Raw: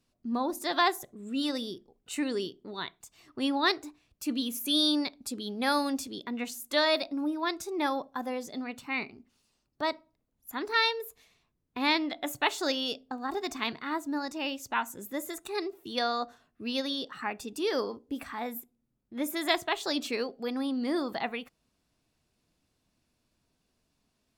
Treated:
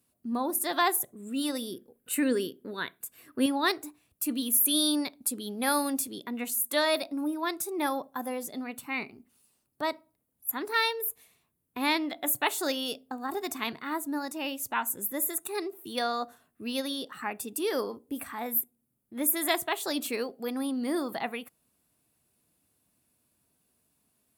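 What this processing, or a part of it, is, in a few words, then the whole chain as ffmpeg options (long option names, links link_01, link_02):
budget condenser microphone: -filter_complex "[0:a]asettb=1/sr,asplit=3[link_01][link_02][link_03];[link_01]atrim=end=1.724[link_04];[link_02]atrim=start=1.72:end=3.46,asetpts=PTS-STARTPTS,afade=type=in:duration=0.004:curve=qsin,afade=type=out:start_time=1.736:duration=0.004:curve=qsin,equalizer=frequency=250:width_type=o:width=0.33:gain=8,equalizer=frequency=500:width_type=o:width=0.33:gain=9,equalizer=frequency=800:width_type=o:width=0.33:gain=-5,equalizer=frequency=1600:width_type=o:width=0.33:gain=10,equalizer=frequency=2500:width_type=o:width=0.33:gain=3,equalizer=frequency=6300:width_type=o:width=0.33:gain=-4,equalizer=frequency=12500:width_type=o:width=0.33:gain=6[link_05];[link_03]atrim=start=3.456[link_06];[link_04][link_05]acrossfade=duration=0.004:curve1=hsin:curve2=qsin[link_07];[link_07][link_06]acrossfade=duration=0.004:curve1=qsin:curve2=hsin,highpass=78,highshelf=frequency=7800:width_type=q:width=1.5:gain=12.5"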